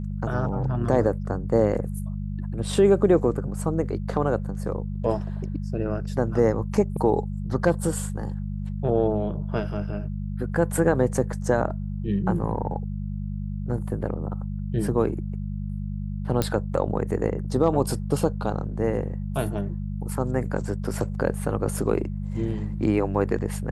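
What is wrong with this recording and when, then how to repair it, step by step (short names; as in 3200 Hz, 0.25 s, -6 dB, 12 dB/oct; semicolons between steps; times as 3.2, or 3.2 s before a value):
hum 50 Hz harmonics 4 -30 dBFS
16.42 pop -9 dBFS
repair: de-click; de-hum 50 Hz, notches 4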